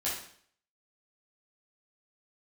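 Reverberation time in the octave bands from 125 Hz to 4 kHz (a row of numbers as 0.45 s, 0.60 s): 0.60 s, 0.60 s, 0.60 s, 0.55 s, 0.55 s, 0.55 s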